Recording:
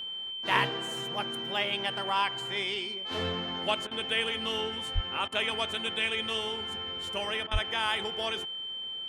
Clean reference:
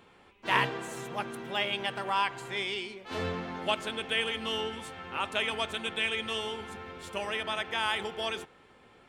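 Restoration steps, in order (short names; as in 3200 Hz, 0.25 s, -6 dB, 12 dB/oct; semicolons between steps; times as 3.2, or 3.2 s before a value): notch 3100 Hz, Q 30; 4.94–5.06 HPF 140 Hz 24 dB/oct; 7.52–7.64 HPF 140 Hz 24 dB/oct; interpolate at 3.87/5.28/7.47, 41 ms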